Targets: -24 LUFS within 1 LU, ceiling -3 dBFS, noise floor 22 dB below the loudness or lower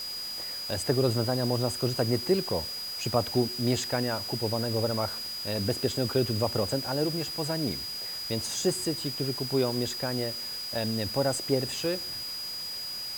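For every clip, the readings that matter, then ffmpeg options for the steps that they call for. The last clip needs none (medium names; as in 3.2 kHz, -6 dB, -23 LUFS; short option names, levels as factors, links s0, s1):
steady tone 4.9 kHz; tone level -34 dBFS; noise floor -36 dBFS; noise floor target -51 dBFS; loudness -29.0 LUFS; peak level -10.5 dBFS; loudness target -24.0 LUFS
-> -af "bandreject=f=4900:w=30"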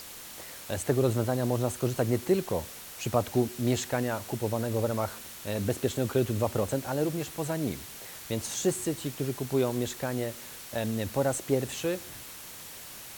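steady tone not found; noise floor -45 dBFS; noise floor target -52 dBFS
-> -af "afftdn=nr=7:nf=-45"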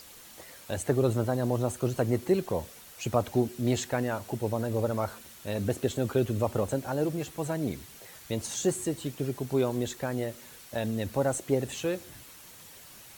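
noise floor -50 dBFS; noise floor target -53 dBFS
-> -af "afftdn=nr=6:nf=-50"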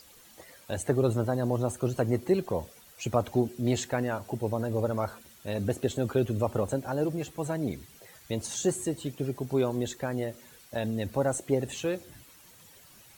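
noise floor -55 dBFS; loudness -30.5 LUFS; peak level -11.0 dBFS; loudness target -24.0 LUFS
-> -af "volume=2.11"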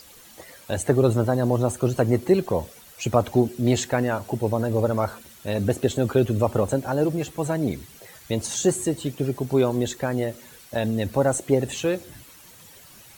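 loudness -24.0 LUFS; peak level -4.5 dBFS; noise floor -49 dBFS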